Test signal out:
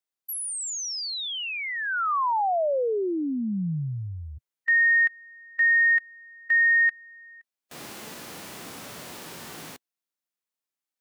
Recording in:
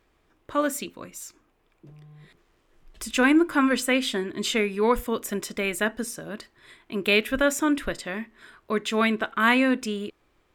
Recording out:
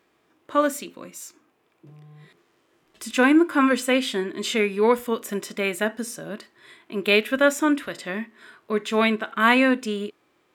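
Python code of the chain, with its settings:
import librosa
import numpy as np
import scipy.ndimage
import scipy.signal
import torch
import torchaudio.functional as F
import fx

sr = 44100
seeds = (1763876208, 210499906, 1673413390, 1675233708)

y = scipy.signal.sosfilt(scipy.signal.butter(2, 170.0, 'highpass', fs=sr, output='sos'), x)
y = fx.dynamic_eq(y, sr, hz=270.0, q=0.75, threshold_db=-32.0, ratio=4.0, max_db=-3)
y = fx.hpss(y, sr, part='percussive', gain_db=-8)
y = y * 10.0 ** (5.5 / 20.0)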